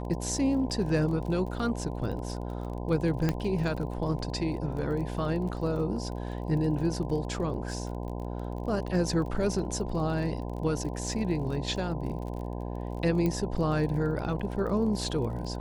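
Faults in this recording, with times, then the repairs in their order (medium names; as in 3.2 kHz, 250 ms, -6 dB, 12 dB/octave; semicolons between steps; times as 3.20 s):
buzz 60 Hz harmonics 17 -35 dBFS
crackle 29 per s -37 dBFS
3.29 s: pop -14 dBFS
13.26 s: pop -17 dBFS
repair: de-click; de-hum 60 Hz, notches 17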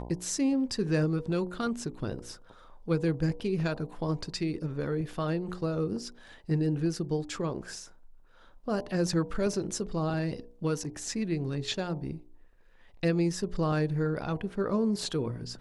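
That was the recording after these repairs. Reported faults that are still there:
nothing left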